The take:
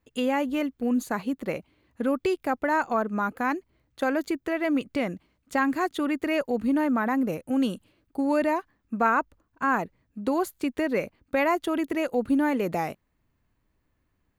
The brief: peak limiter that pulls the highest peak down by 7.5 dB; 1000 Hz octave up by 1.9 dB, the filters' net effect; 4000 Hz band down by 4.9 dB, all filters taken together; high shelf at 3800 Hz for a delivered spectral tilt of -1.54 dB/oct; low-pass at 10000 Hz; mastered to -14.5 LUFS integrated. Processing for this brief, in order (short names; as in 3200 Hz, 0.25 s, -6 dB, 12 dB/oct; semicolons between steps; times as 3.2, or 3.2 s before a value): LPF 10000 Hz; bell 1000 Hz +3 dB; high shelf 3800 Hz -6 dB; bell 4000 Hz -4 dB; gain +13 dB; limiter -3.5 dBFS